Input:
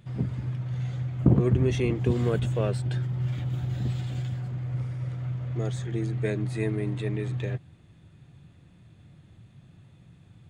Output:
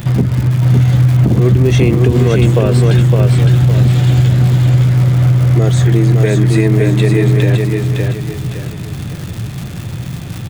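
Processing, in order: compression 3:1, threshold -40 dBFS, peak gain reduction 19 dB; crackle 160 per s -47 dBFS; feedback delay 561 ms, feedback 37%, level -4 dB; loudness maximiser +28.5 dB; trim -1 dB

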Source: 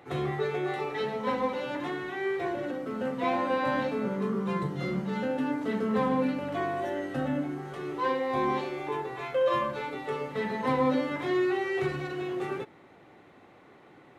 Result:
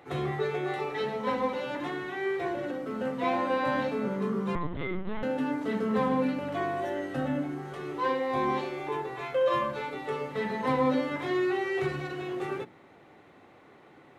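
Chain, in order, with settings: hum notches 60/120/180/240/300/360 Hz; 4.55–5.23 s: LPC vocoder at 8 kHz pitch kept

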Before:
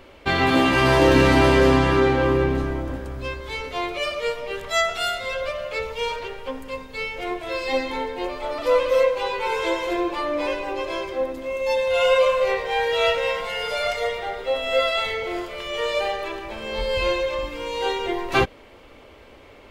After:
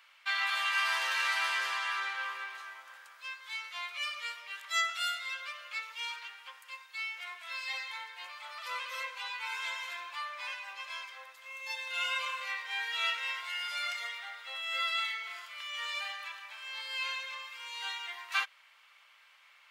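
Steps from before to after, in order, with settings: high-pass 1.2 kHz 24 dB/octave; trim -7 dB

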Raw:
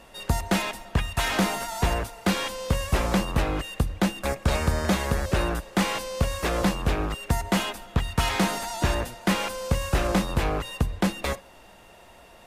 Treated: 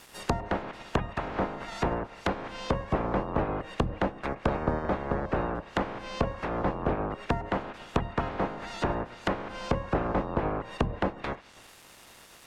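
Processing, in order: spectral peaks clipped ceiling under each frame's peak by 17 dB; bit crusher 8-bit; low-pass that closes with the level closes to 970 Hz, closed at -22.5 dBFS; trim -2.5 dB

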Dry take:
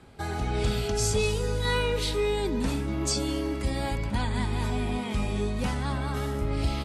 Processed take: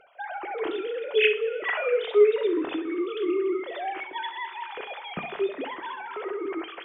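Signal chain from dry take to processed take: formants replaced by sine waves; reverse; upward compressor, threshold -38 dBFS; reverse; flutter echo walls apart 11.2 m, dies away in 0.33 s; two-slope reverb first 0.23 s, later 3 s, from -18 dB, DRR 9.5 dB; trim -1 dB

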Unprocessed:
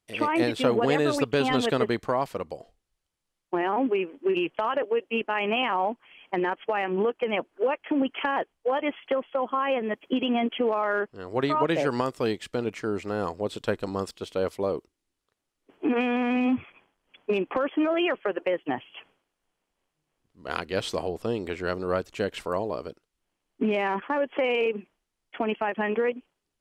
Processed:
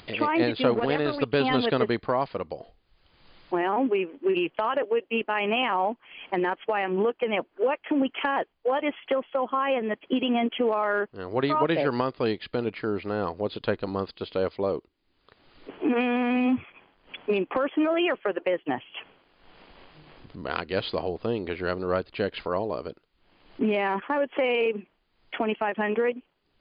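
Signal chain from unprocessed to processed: 0.74–1.23 s: power-law waveshaper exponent 1.4; upward compressor, threshold -28 dBFS; trim +1 dB; MP3 56 kbps 11.025 kHz

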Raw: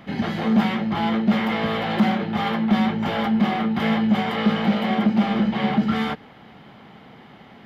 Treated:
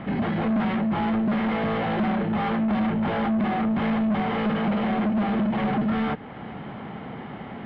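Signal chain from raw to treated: in parallel at +2.5 dB: compression, threshold -37 dBFS, peak gain reduction 21.5 dB; on the sum: saturation -23.5 dBFS, distortion -7 dB; distance through air 460 m; trim +3.5 dB

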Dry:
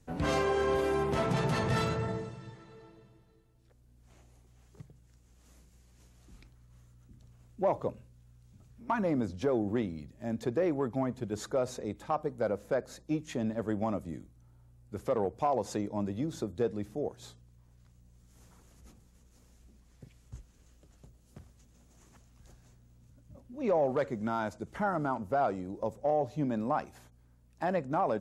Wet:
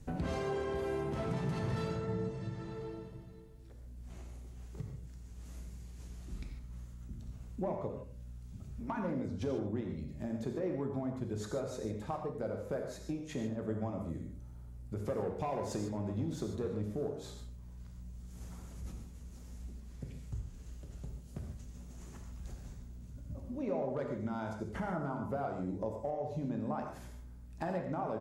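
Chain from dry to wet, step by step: bass shelf 310 Hz +9 dB; de-hum 96.71 Hz, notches 6; 15.09–17.10 s: waveshaping leveller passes 1; compression 4:1, threshold -41 dBFS, peak gain reduction 18 dB; delay 88 ms -14.5 dB; gated-style reverb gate 170 ms flat, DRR 2.5 dB; trim +3 dB

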